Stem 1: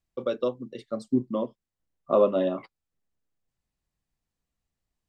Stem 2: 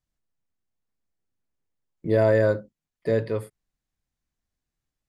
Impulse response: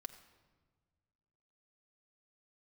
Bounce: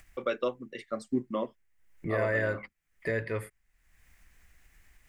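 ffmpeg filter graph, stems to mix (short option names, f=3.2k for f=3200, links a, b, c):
-filter_complex "[0:a]volume=3dB[a];[1:a]lowshelf=f=150:g=7,alimiter=limit=-17dB:level=0:latency=1:release=382,volume=2dB,asplit=2[b][c];[c]apad=whole_len=224183[d];[a][d]sidechaincompress=threshold=-35dB:ratio=3:attack=16:release=193[e];[e][b]amix=inputs=2:normalize=0,equalizer=f=125:t=o:w=1:g=-9,equalizer=f=250:t=o:w=1:g=-6,equalizer=f=500:t=o:w=1:g=-5,equalizer=f=1k:t=o:w=1:g=-4,equalizer=f=2k:t=o:w=1:g=12,equalizer=f=4k:t=o:w=1:g=-8,acompressor=mode=upward:threshold=-43dB:ratio=2.5"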